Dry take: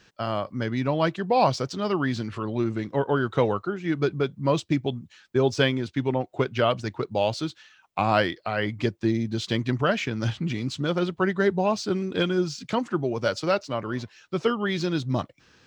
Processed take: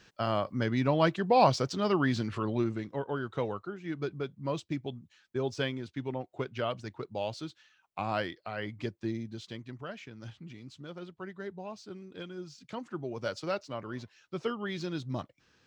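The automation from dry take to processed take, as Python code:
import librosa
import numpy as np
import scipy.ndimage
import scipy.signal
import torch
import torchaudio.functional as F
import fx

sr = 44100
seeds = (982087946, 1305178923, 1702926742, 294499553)

y = fx.gain(x, sr, db=fx.line((2.5, -2.0), (3.01, -10.5), (9.15, -10.5), (9.66, -18.5), (12.32, -18.5), (13.2, -9.5)))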